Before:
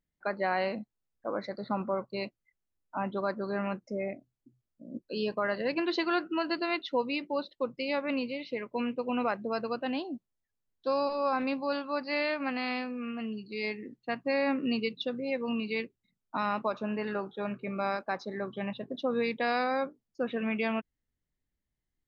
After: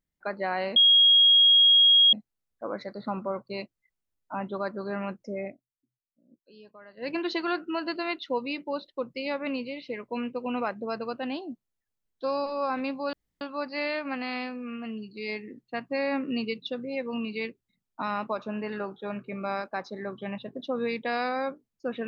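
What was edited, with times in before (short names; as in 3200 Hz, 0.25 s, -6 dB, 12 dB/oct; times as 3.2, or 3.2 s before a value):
0.76 add tone 3280 Hz -14.5 dBFS 1.37 s
4.11–5.72 dip -19.5 dB, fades 0.12 s
11.76 insert room tone 0.28 s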